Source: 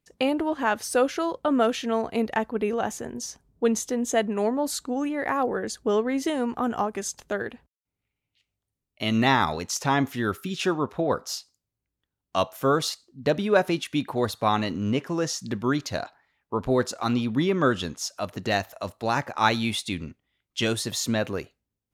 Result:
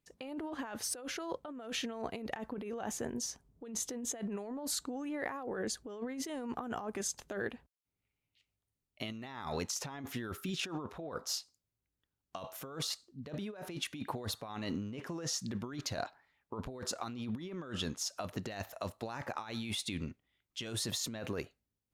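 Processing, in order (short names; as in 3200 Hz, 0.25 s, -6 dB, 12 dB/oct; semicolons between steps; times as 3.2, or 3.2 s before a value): negative-ratio compressor -31 dBFS, ratio -1; gain -9 dB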